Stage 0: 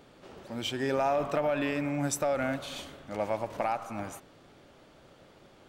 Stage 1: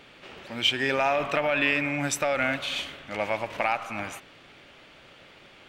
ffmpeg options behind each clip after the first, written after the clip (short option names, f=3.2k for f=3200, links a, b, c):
-af "equalizer=f=2.5k:w=0.82:g=14.5"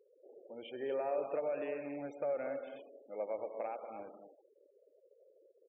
-filter_complex "[0:a]bandpass=f=470:t=q:w=3.5:csg=0,asplit=2[a][b];[b]aecho=0:1:90|129|188|238:0.106|0.2|0.2|0.335[c];[a][c]amix=inputs=2:normalize=0,afftfilt=real='re*gte(hypot(re,im),0.00398)':imag='im*gte(hypot(re,im),0.00398)':win_size=1024:overlap=0.75,volume=-3.5dB"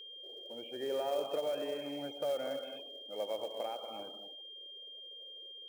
-filter_complex "[0:a]acrossover=split=390|1600[a][b][c];[c]alimiter=level_in=28dB:limit=-24dB:level=0:latency=1,volume=-28dB[d];[a][b][d]amix=inputs=3:normalize=0,acrusher=bits=5:mode=log:mix=0:aa=0.000001,aeval=exprs='val(0)+0.00398*sin(2*PI*3200*n/s)':c=same,volume=1dB"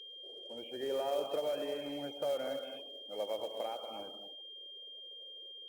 -ar 48000 -c:a libopus -b:a 32k